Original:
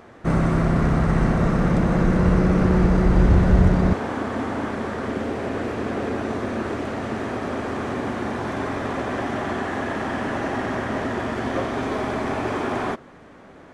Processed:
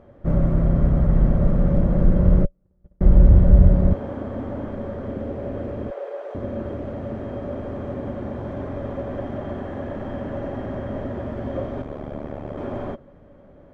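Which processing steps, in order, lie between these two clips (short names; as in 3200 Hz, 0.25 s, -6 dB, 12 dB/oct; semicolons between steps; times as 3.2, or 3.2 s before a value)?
2.45–3.01 gate -10 dBFS, range -49 dB; 5.9–6.35 steep high-pass 420 Hz 48 dB/oct; tilt -4 dB/oct; small resonant body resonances 570/3200 Hz, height 15 dB, ringing for 75 ms; 11.82–12.58 AM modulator 73 Hz, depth 90%; gain -11.5 dB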